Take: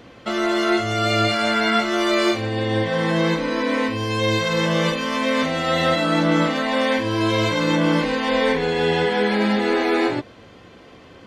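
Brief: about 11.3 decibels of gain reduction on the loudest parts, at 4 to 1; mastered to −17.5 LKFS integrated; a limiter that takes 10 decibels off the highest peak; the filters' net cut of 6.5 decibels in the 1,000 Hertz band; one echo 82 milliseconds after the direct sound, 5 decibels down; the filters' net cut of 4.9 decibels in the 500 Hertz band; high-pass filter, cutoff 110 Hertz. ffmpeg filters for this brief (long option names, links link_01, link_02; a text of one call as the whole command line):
ffmpeg -i in.wav -af "highpass=110,equalizer=frequency=500:width_type=o:gain=-4,equalizer=frequency=1000:width_type=o:gain=-8,acompressor=threshold=-31dB:ratio=4,alimiter=level_in=6.5dB:limit=-24dB:level=0:latency=1,volume=-6.5dB,aecho=1:1:82:0.562,volume=19.5dB" out.wav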